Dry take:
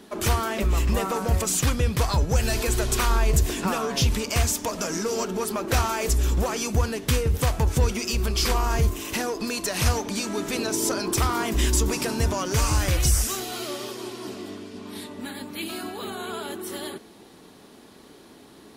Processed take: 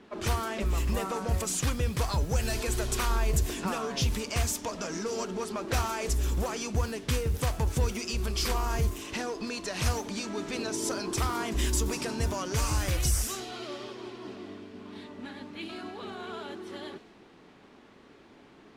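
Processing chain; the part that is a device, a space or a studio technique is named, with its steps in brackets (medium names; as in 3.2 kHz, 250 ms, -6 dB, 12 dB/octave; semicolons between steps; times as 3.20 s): cassette deck with a dynamic noise filter (white noise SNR 23 dB; level-controlled noise filter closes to 2.1 kHz, open at -19 dBFS); trim -6 dB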